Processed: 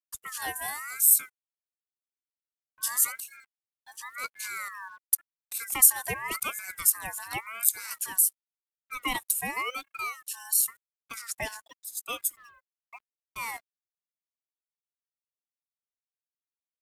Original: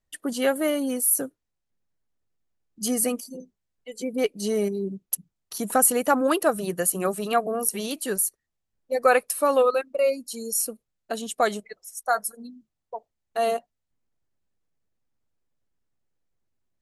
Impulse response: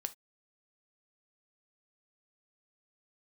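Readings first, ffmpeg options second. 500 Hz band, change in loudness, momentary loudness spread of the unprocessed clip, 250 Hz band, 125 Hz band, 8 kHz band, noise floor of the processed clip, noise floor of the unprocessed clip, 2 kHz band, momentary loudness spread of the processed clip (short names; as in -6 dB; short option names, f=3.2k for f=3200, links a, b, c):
-24.0 dB, -2.0 dB, 15 LU, -20.5 dB, -10.0 dB, +1.0 dB, under -85 dBFS, -81 dBFS, -2.5 dB, 20 LU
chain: -af "aemphasis=mode=production:type=75fm,acrusher=bits=7:mix=0:aa=0.5,aeval=exprs='val(0)*sin(2*PI*1600*n/s+1600*0.2/0.91*sin(2*PI*0.91*n/s))':c=same,volume=-9.5dB"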